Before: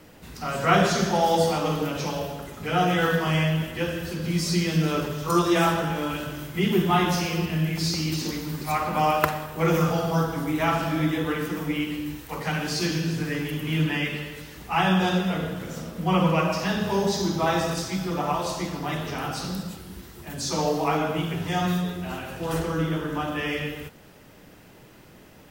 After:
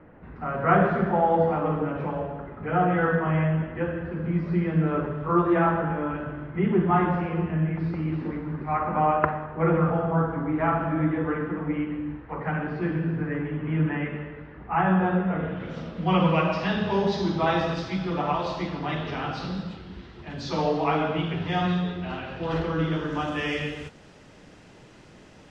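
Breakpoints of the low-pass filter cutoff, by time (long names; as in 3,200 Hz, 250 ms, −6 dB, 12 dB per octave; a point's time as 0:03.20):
low-pass filter 24 dB per octave
0:15.32 1,800 Hz
0:15.79 4,000 Hz
0:22.75 4,000 Hz
0:23.32 7,800 Hz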